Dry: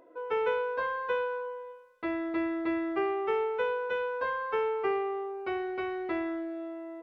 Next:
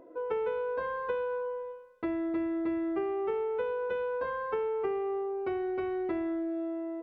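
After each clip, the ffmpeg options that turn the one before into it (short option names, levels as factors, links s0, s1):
-af "tiltshelf=f=740:g=6.5,acompressor=threshold=0.0251:ratio=4,volume=1.26"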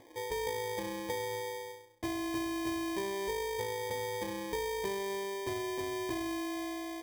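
-af "equalizer=f=110:t=o:w=0.67:g=15,acrusher=samples=32:mix=1:aa=0.000001,volume=0.596"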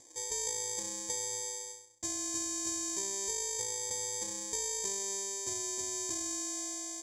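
-af "aexciter=amount=2.7:drive=8.5:freq=4000,lowpass=f=7100:t=q:w=9.5,volume=0.355"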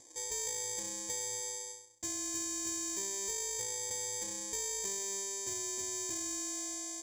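-af "asoftclip=type=tanh:threshold=0.0355"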